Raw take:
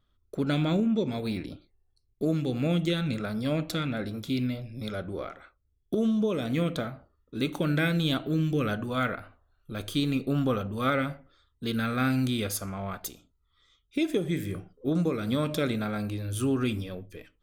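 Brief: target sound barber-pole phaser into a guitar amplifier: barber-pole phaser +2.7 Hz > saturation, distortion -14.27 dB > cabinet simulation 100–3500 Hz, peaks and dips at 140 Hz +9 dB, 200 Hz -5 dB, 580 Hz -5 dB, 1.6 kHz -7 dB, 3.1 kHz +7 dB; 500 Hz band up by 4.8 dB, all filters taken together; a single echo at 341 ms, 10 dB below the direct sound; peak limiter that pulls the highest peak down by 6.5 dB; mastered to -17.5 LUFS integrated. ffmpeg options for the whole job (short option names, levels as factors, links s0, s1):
-filter_complex "[0:a]equalizer=f=500:t=o:g=8,alimiter=limit=0.15:level=0:latency=1,aecho=1:1:341:0.316,asplit=2[s0][s1];[s1]afreqshift=2.7[s2];[s0][s2]amix=inputs=2:normalize=1,asoftclip=threshold=0.0596,highpass=100,equalizer=f=140:t=q:w=4:g=9,equalizer=f=200:t=q:w=4:g=-5,equalizer=f=580:t=q:w=4:g=-5,equalizer=f=1600:t=q:w=4:g=-7,equalizer=f=3100:t=q:w=4:g=7,lowpass=f=3500:w=0.5412,lowpass=f=3500:w=1.3066,volume=5.96"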